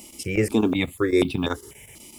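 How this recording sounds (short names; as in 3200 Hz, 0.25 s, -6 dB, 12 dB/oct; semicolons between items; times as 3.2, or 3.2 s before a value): chopped level 8 Hz, depth 65%, duty 85%; a quantiser's noise floor 10-bit, dither triangular; notches that jump at a steady rate 4.1 Hz 420–1900 Hz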